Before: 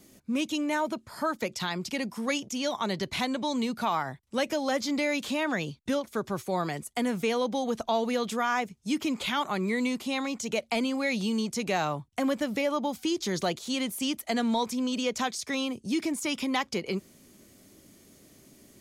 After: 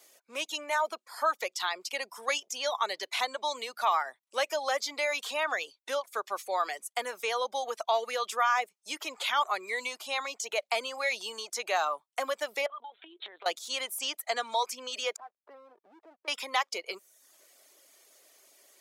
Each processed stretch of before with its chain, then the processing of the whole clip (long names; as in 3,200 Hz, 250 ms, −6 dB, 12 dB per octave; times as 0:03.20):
0:12.66–0:13.46: linear-prediction vocoder at 8 kHz pitch kept + downward compressor 20 to 1, threshold −35 dBFS
0:15.16–0:16.28: low-pass filter 1,200 Hz 24 dB per octave + downward compressor 5 to 1, threshold −40 dBFS + slack as between gear wheels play −46.5 dBFS
whole clip: reverb reduction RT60 0.69 s; high-pass filter 540 Hz 24 dB per octave; dynamic equaliser 1,200 Hz, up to +5 dB, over −48 dBFS, Q 5.5; level +1 dB